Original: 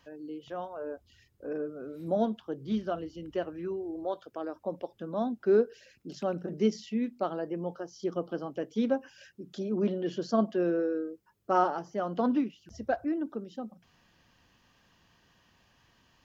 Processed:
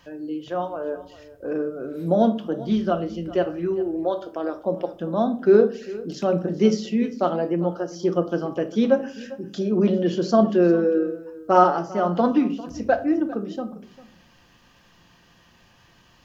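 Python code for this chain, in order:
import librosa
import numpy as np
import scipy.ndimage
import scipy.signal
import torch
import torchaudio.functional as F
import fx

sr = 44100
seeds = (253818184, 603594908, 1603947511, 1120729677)

p1 = x + fx.echo_single(x, sr, ms=399, db=-18.0, dry=0)
p2 = fx.room_shoebox(p1, sr, seeds[0], volume_m3=450.0, walls='furnished', distance_m=0.84)
y = F.gain(torch.from_numpy(p2), 8.5).numpy()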